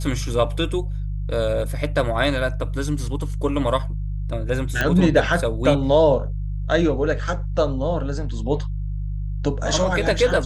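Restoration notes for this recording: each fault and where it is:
hum 50 Hz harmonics 3 -26 dBFS
4.81 pop -7 dBFS

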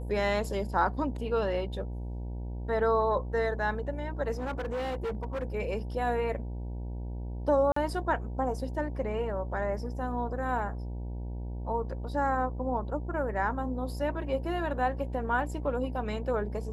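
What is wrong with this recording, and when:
buzz 60 Hz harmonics 16 -36 dBFS
4.33–5.44 clipped -29.5 dBFS
7.72–7.76 gap 44 ms

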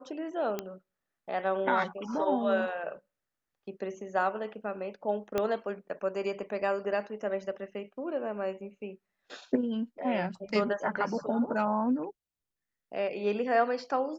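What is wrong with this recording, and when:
0.59 pop -18 dBFS
5.38 pop -15 dBFS

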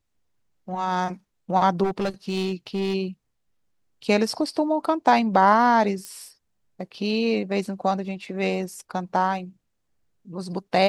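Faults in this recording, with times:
1.83–2.95 clipped -20.5 dBFS
6.05 pop -19 dBFS

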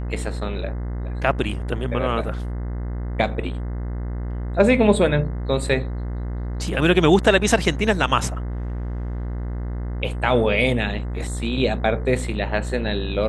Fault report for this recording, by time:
buzz 60 Hz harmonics 35 -27 dBFS

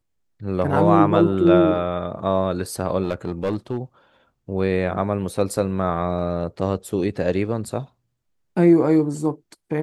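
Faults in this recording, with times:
3.04–3.78 clipped -17.5 dBFS

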